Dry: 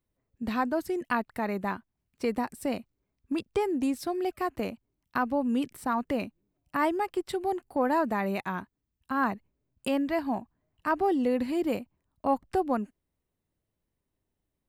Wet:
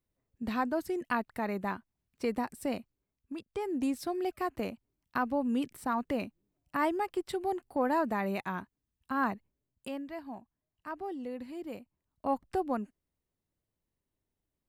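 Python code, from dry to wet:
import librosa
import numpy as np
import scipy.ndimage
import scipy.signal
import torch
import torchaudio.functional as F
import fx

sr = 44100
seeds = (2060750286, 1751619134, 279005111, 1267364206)

y = fx.gain(x, sr, db=fx.line((2.79, -3.0), (3.47, -12.0), (3.78, -3.0), (9.3, -3.0), (10.09, -13.0), (11.67, -13.0), (12.31, -4.5)))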